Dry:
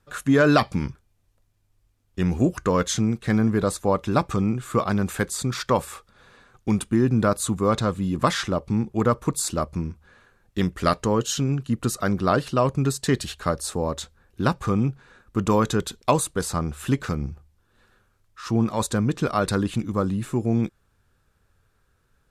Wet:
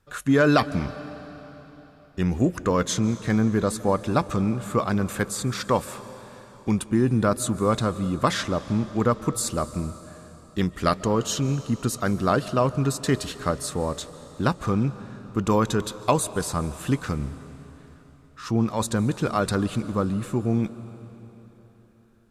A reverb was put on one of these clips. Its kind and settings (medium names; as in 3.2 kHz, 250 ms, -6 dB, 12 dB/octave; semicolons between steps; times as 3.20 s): algorithmic reverb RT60 3.9 s, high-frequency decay 0.95×, pre-delay 105 ms, DRR 14.5 dB; trim -1 dB